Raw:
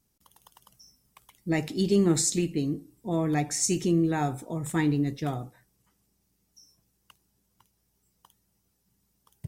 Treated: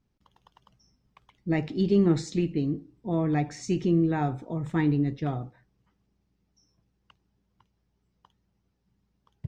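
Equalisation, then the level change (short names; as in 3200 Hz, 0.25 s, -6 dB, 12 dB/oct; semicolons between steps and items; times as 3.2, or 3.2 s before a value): air absorption 210 m; low shelf 200 Hz +3 dB; 0.0 dB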